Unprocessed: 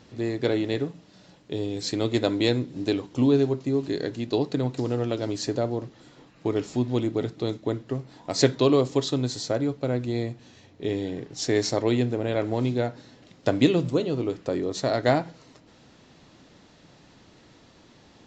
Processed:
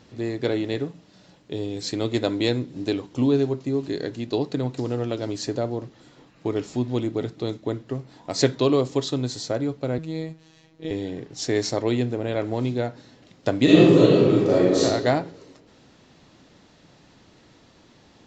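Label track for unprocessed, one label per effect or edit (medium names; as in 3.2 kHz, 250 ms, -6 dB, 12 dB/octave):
9.980000	10.910000	robot voice 160 Hz
13.640000	14.820000	reverb throw, RT60 1.3 s, DRR -9.5 dB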